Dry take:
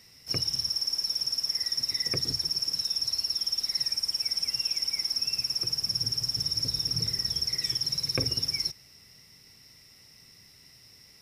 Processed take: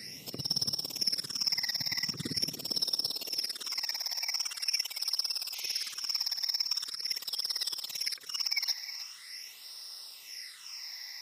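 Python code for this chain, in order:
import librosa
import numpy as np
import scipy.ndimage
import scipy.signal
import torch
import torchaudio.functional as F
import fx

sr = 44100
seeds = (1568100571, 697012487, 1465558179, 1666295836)

p1 = fx.over_compress(x, sr, threshold_db=-36.0, ratio=-0.5)
p2 = fx.filter_sweep_highpass(p1, sr, from_hz=190.0, to_hz=1100.0, start_s=2.27, end_s=5.03, q=1.1)
p3 = fx.phaser_stages(p2, sr, stages=8, low_hz=390.0, high_hz=2300.0, hz=0.43, feedback_pct=20)
p4 = fx.spec_paint(p3, sr, seeds[0], shape='noise', start_s=5.54, length_s=0.39, low_hz=2000.0, high_hz=6600.0, level_db=-49.0)
p5 = p4 + fx.echo_single(p4, sr, ms=315, db=-13.0, dry=0)
y = F.gain(torch.from_numpy(p5), 5.5).numpy()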